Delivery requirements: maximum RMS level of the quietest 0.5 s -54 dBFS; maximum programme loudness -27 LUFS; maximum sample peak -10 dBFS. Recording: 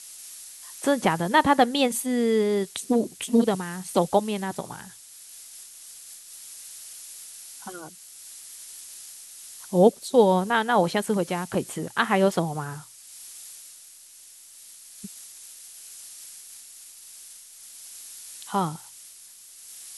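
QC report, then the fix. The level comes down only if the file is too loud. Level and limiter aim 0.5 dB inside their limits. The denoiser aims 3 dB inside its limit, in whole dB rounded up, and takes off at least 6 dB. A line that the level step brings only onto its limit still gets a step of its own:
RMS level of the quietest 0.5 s -49 dBFS: fail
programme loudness -23.5 LUFS: fail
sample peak -5.0 dBFS: fail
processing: denoiser 6 dB, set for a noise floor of -49 dBFS; gain -4 dB; limiter -10.5 dBFS

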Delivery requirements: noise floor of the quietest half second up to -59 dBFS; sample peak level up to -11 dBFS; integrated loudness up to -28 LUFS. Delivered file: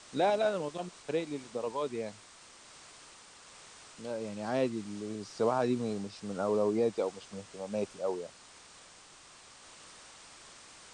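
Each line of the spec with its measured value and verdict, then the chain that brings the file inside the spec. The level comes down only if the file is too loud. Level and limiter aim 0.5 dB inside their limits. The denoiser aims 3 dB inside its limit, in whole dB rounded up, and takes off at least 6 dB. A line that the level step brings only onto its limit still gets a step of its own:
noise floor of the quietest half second -55 dBFS: fail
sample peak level -17.0 dBFS: OK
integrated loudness -34.0 LUFS: OK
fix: denoiser 7 dB, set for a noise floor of -55 dBFS

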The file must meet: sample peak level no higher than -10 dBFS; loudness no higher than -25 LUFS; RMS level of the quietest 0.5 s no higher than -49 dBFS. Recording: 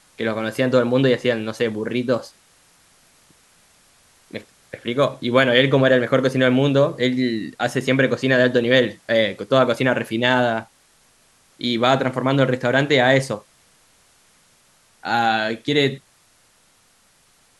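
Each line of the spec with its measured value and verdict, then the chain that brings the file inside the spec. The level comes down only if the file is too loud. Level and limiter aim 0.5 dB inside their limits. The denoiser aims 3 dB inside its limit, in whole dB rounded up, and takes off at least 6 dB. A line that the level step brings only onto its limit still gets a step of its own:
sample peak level -2.0 dBFS: fail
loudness -19.0 LUFS: fail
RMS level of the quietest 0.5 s -58 dBFS: OK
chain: gain -6.5 dB; limiter -10.5 dBFS

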